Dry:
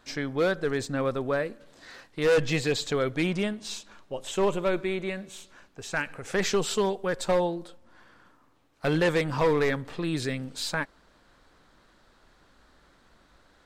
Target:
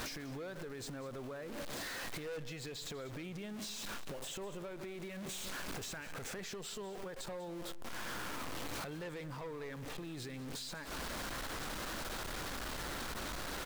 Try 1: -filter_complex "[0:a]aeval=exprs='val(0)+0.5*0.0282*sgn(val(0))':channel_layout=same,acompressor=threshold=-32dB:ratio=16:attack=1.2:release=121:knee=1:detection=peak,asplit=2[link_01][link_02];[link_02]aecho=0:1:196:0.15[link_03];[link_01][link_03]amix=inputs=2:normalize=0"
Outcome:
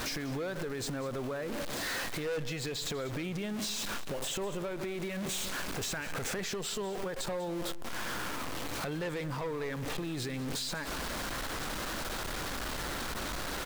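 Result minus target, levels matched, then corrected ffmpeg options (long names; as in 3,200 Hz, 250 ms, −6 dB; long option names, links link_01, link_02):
downward compressor: peak gain reduction −8.5 dB
-filter_complex "[0:a]aeval=exprs='val(0)+0.5*0.0282*sgn(val(0))':channel_layout=same,acompressor=threshold=-41dB:ratio=16:attack=1.2:release=121:knee=1:detection=peak,asplit=2[link_01][link_02];[link_02]aecho=0:1:196:0.15[link_03];[link_01][link_03]amix=inputs=2:normalize=0"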